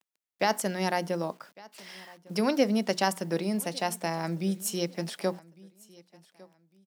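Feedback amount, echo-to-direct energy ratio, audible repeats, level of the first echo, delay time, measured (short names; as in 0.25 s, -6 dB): 28%, -22.5 dB, 2, -23.0 dB, 1.154 s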